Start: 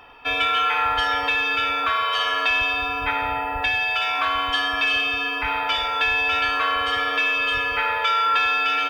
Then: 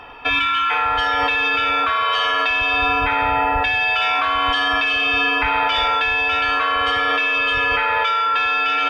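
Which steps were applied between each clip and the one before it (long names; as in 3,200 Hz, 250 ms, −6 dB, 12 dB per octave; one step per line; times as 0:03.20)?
gain on a spectral selection 0:00.30–0:00.70, 360–900 Hz −19 dB
high-shelf EQ 6,000 Hz −10 dB
in parallel at +1 dB: compressor whose output falls as the input rises −26 dBFS, ratio −0.5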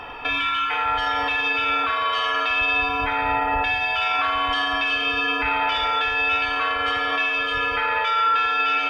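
brickwall limiter −18.5 dBFS, peak gain reduction 11.5 dB
comb and all-pass reverb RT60 1.8 s, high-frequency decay 0.85×, pre-delay 10 ms, DRR 8 dB
level +3 dB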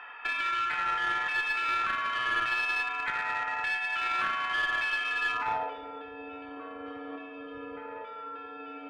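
loose part that buzzes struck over −41 dBFS, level −28 dBFS
band-pass filter sweep 1,700 Hz → 310 Hz, 0:05.29–0:05.82
harmonic generator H 2 −12 dB, 8 −34 dB, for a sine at −16.5 dBFS
level −2.5 dB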